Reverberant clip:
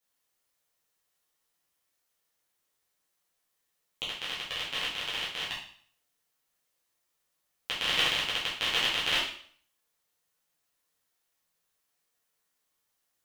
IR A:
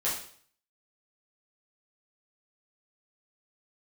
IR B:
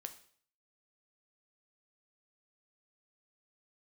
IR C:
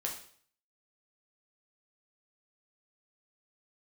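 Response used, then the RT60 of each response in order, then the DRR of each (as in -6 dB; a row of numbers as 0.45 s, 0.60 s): A; 0.55 s, 0.55 s, 0.55 s; -8.0 dB, 7.0 dB, -1.0 dB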